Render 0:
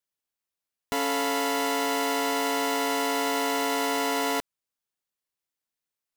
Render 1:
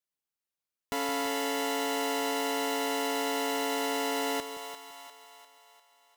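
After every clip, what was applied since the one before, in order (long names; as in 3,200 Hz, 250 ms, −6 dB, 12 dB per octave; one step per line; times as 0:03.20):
echo with a time of its own for lows and highs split 540 Hz, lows 168 ms, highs 349 ms, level −9 dB
level −4.5 dB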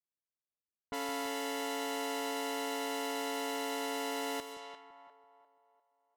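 low-pass that shuts in the quiet parts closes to 620 Hz, open at −31.5 dBFS
level −6 dB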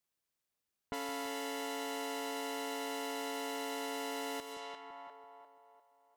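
downward compressor 2 to 1, threshold −54 dBFS, peak gain reduction 11 dB
level +8 dB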